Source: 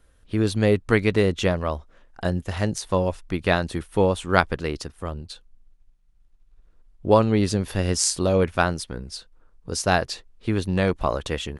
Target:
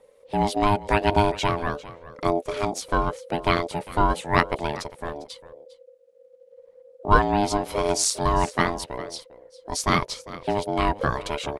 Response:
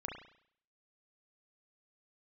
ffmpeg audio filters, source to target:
-af "aecho=1:1:401:0.126,aphaser=in_gain=1:out_gain=1:delay=4.5:decay=0.33:speed=0.87:type=triangular,aeval=exprs='val(0)*sin(2*PI*510*n/s)':c=same,volume=1.19"

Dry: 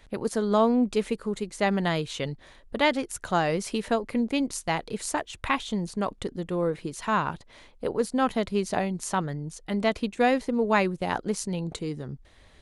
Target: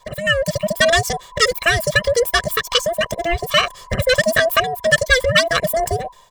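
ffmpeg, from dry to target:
-filter_complex "[0:a]afftfilt=real='real(if(between(b,1,1008),(2*floor((b-1)/24)+1)*24-b,b),0)':imag='imag(if(between(b,1,1008),(2*floor((b-1)/24)+1)*24-b,b),0)*if(between(b,1,1008),-1,1)':win_size=2048:overlap=0.75,aecho=1:1:3.5:0.81,acrossover=split=650[s0][s1];[s0]alimiter=limit=0.1:level=0:latency=1:release=275[s2];[s2][s1]amix=inputs=2:normalize=0,dynaudnorm=f=220:g=7:m=4.47,asetrate=88200,aresample=44100"

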